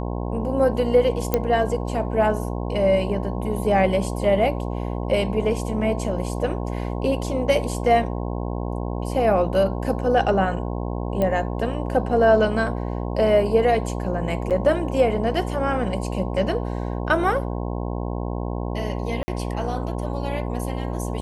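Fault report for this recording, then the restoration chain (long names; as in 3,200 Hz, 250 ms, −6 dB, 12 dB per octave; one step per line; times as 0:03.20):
mains buzz 60 Hz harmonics 18 −27 dBFS
0:01.34: click −6 dBFS
0:11.22: click −12 dBFS
0:14.50–0:14.51: drop-out 7.4 ms
0:19.23–0:19.28: drop-out 50 ms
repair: click removal
hum removal 60 Hz, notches 18
repair the gap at 0:14.50, 7.4 ms
repair the gap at 0:19.23, 50 ms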